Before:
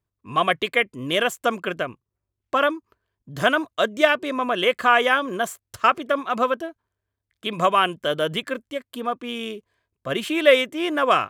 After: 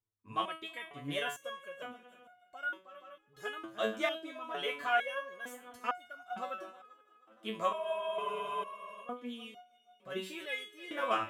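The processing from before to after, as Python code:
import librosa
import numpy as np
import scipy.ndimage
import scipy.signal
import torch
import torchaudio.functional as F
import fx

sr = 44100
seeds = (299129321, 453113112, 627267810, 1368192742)

y = fx.echo_heads(x, sr, ms=158, heads='second and third', feedback_pct=41, wet_db=-19.0)
y = fx.spec_freeze(y, sr, seeds[0], at_s=7.73, hold_s=1.32)
y = fx.resonator_held(y, sr, hz=2.2, low_hz=110.0, high_hz=720.0)
y = y * librosa.db_to_amplitude(-2.5)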